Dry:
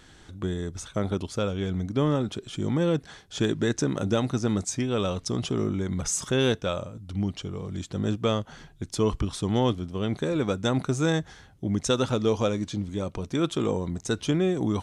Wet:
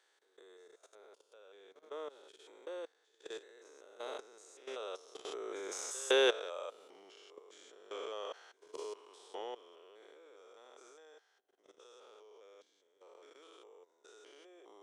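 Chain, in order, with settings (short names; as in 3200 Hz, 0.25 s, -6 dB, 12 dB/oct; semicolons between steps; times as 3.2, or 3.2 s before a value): stepped spectrum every 0.2 s; Doppler pass-by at 6.38, 12 m/s, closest 6.9 m; elliptic high-pass 420 Hz, stop band 70 dB; pre-echo 0.162 s -18.5 dB; level quantiser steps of 16 dB; gain +5.5 dB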